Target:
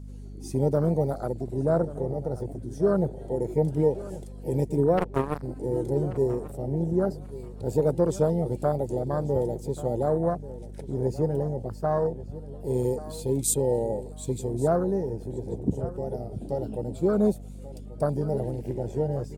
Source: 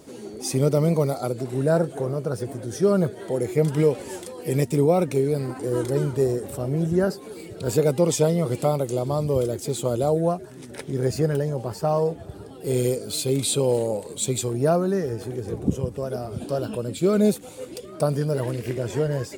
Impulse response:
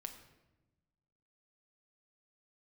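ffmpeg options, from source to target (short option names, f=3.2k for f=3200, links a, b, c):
-filter_complex "[0:a]bass=f=250:g=-1,treble=f=4k:g=5,afwtdn=0.0631,asplit=3[a][b][c];[a]afade=t=out:st=4.97:d=0.02[d];[b]acrusher=bits=2:mix=0:aa=0.5,afade=t=in:st=4.97:d=0.02,afade=t=out:st=5.42:d=0.02[e];[c]afade=t=in:st=5.42:d=0.02[f];[d][e][f]amix=inputs=3:normalize=0,aeval=exprs='val(0)+0.0158*(sin(2*PI*50*n/s)+sin(2*PI*2*50*n/s)/2+sin(2*PI*3*50*n/s)/3+sin(2*PI*4*50*n/s)/4+sin(2*PI*5*50*n/s)/5)':c=same,asplit=2[g][h];[h]adelay=1135,lowpass=f=4.9k:p=1,volume=-16dB,asplit=2[i][j];[j]adelay=1135,lowpass=f=4.9k:p=1,volume=0.22[k];[i][k]amix=inputs=2:normalize=0[l];[g][l]amix=inputs=2:normalize=0,volume=-3dB"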